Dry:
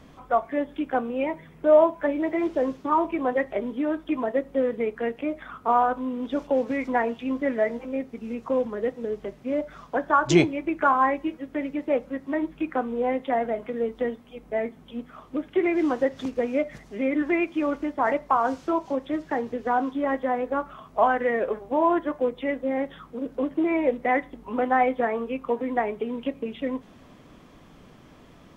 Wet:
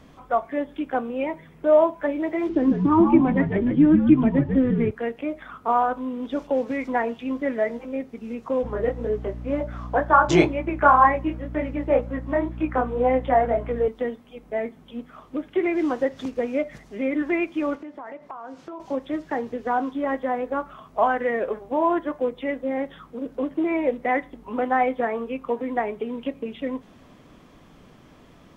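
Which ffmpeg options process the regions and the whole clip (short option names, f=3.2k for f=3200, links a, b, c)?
-filter_complex "[0:a]asettb=1/sr,asplit=3[a][b][c];[a]atrim=end=2.494[d];[b]atrim=start=2.49:end=4.91,asetpts=PTS-STARTPTS,afade=t=in:d=0.004:c=qsin,afade=t=out:st=2.416:d=0.004:c=qsin,lowpass=4.8k,lowshelf=f=420:t=q:w=3:g=6.5,asplit=5[e][f][g][h][i];[f]adelay=146,afreqshift=-82,volume=-5dB[j];[g]adelay=292,afreqshift=-164,volume=-14.4dB[k];[h]adelay=438,afreqshift=-246,volume=-23.7dB[l];[i]adelay=584,afreqshift=-328,volume=-33.1dB[m];[e][j][k][l][m]amix=inputs=5:normalize=0,atrim=end_sample=106722[n];[c]atrim=start=4.906[o];[d][n]acrossfade=d=0.004:c1=hsin:c2=qsin[p];[p][o]acrossfade=d=0.004:c1=qsin:c2=hsin,asettb=1/sr,asplit=3[q][r][s];[q]atrim=end=8.634[t];[r]atrim=start=8.63:end=13.88,asetpts=PTS-STARTPTS,afade=t=in:d=0.004:c=qsin,afade=t=out:st=5.246:d=0.004:c=qsin,equalizer=f=860:t=o:w=2.8:g=9,flanger=delay=19:depth=5.4:speed=2,aeval=exprs='val(0)+0.0224*(sin(2*PI*60*n/s)+sin(2*PI*2*60*n/s)/2+sin(2*PI*3*60*n/s)/3+sin(2*PI*4*60*n/s)/4+sin(2*PI*5*60*n/s)/5)':c=same[u];[s]atrim=start=13.876[v];[t][u]acrossfade=d=0.004:c1=hsin:c2=qsin[w];[w][v]acrossfade=d=0.004:c1=qsin:c2=hsin,asettb=1/sr,asplit=3[x][y][z];[x]atrim=end=17.754[aa];[y]atrim=start=17.75:end=18.8,asetpts=PTS-STARTPTS,afade=t=in:d=0.004:c=qsin,afade=t=out:st=1.046:d=0.004:c=qsin,highpass=130,acompressor=threshold=-35dB:ratio=5:attack=3.2:release=140:knee=1:detection=peak,highshelf=f=5.7k:g=-8.5[ab];[z]atrim=start=18.796[ac];[aa][ab]acrossfade=d=0.004:c1=hsin:c2=qsin[ad];[ad][ac]acrossfade=d=0.004:c1=qsin:c2=hsin"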